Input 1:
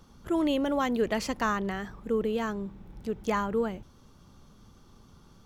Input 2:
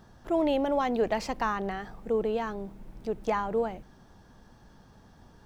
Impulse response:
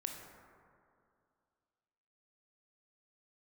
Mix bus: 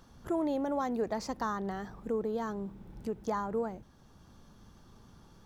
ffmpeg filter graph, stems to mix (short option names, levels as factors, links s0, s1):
-filter_complex "[0:a]volume=0.75[s0];[1:a]highpass=f=41:w=0.5412,highpass=f=41:w=1.3066,volume=0.376,asplit=2[s1][s2];[s2]apad=whole_len=240383[s3];[s0][s3]sidechaincompress=threshold=0.0126:ratio=8:attack=5.6:release=996[s4];[s4][s1]amix=inputs=2:normalize=0"